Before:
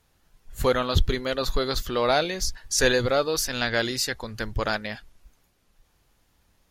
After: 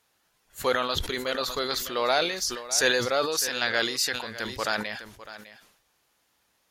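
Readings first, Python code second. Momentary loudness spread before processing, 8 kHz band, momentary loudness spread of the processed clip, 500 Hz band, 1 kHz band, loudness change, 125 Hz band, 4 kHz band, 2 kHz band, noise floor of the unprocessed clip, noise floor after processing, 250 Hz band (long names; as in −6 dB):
9 LU, +0.5 dB, 13 LU, −3.0 dB, −0.5 dB, −1.0 dB, −12.5 dB, +1.0 dB, +0.5 dB, −67 dBFS, −71 dBFS, −5.0 dB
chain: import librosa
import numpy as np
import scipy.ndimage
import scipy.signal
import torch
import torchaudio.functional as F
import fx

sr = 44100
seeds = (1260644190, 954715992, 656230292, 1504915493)

y = fx.highpass(x, sr, hz=620.0, slope=6)
y = y + 10.0 ** (-15.0 / 20.0) * np.pad(y, (int(605 * sr / 1000.0), 0))[:len(y)]
y = fx.sustainer(y, sr, db_per_s=71.0)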